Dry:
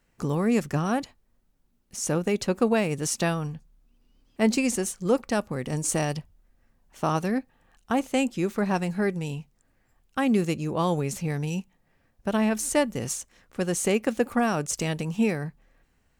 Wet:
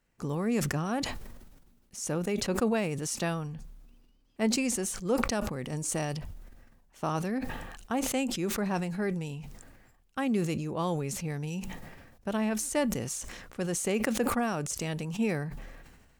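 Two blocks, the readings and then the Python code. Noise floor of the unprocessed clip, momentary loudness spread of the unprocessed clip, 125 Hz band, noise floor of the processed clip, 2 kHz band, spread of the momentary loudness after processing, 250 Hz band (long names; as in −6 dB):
−68 dBFS, 10 LU, −4.5 dB, −64 dBFS, −4.0 dB, 13 LU, −5.0 dB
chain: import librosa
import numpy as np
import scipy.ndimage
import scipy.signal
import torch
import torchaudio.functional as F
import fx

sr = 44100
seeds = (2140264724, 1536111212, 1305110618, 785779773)

y = fx.sustainer(x, sr, db_per_s=41.0)
y = y * 10.0 ** (-6.0 / 20.0)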